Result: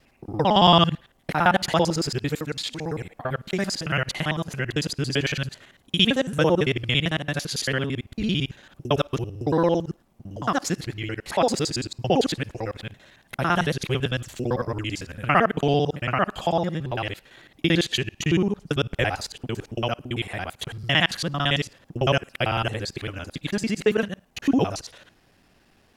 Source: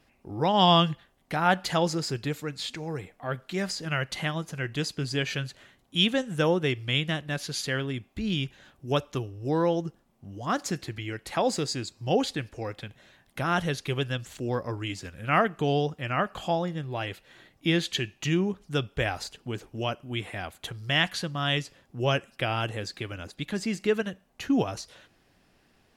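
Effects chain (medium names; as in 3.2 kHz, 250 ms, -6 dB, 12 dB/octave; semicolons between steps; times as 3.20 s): time reversed locally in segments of 56 ms; trim +4.5 dB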